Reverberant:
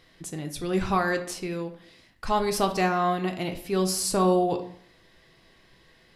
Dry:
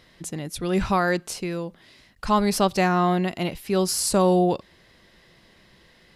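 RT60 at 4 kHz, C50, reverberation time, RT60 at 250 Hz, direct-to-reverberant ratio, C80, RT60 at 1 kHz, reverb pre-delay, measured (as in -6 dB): 0.40 s, 11.0 dB, 0.65 s, 0.75 s, 4.5 dB, 14.5 dB, 0.60 s, 3 ms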